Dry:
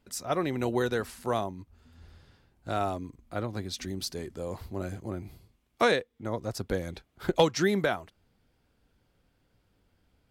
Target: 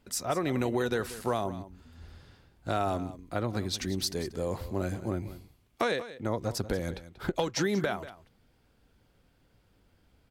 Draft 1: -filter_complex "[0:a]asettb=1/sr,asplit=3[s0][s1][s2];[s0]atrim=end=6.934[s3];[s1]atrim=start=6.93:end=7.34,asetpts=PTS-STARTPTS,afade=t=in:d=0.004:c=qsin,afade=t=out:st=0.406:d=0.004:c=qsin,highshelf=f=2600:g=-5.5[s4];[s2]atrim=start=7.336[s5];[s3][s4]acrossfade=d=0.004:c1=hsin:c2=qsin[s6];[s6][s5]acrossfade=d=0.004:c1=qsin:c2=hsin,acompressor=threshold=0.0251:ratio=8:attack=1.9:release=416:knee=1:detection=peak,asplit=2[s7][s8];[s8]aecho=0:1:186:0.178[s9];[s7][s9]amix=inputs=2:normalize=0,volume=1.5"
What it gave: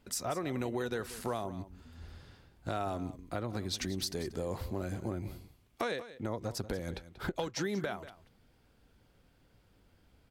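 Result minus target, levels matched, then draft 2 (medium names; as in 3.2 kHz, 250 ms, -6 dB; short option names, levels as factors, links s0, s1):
compression: peak gain reduction +6 dB
-filter_complex "[0:a]asettb=1/sr,asplit=3[s0][s1][s2];[s0]atrim=end=6.934[s3];[s1]atrim=start=6.93:end=7.34,asetpts=PTS-STARTPTS,afade=t=in:d=0.004:c=qsin,afade=t=out:st=0.406:d=0.004:c=qsin,highshelf=f=2600:g=-5.5[s4];[s2]atrim=start=7.336[s5];[s3][s4]acrossfade=d=0.004:c1=hsin:c2=qsin[s6];[s6][s5]acrossfade=d=0.004:c1=qsin:c2=hsin,acompressor=threshold=0.0562:ratio=8:attack=1.9:release=416:knee=1:detection=peak,asplit=2[s7][s8];[s8]aecho=0:1:186:0.178[s9];[s7][s9]amix=inputs=2:normalize=0,volume=1.5"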